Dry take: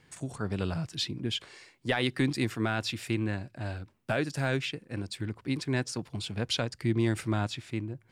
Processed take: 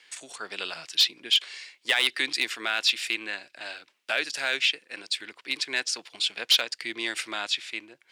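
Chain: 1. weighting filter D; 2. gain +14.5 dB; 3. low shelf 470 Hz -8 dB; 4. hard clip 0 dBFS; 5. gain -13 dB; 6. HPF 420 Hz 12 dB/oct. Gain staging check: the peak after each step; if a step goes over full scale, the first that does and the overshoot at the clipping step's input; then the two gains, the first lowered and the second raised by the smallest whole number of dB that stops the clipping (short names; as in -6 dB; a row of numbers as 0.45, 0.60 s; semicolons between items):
-5.0, +9.5, +9.0, 0.0, -13.0, -10.0 dBFS; step 2, 9.0 dB; step 2 +5.5 dB, step 5 -4 dB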